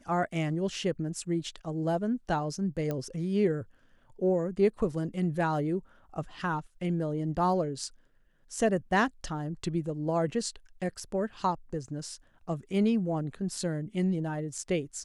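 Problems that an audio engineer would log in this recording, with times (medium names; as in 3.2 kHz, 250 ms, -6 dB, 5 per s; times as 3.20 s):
2.91 s: pop -20 dBFS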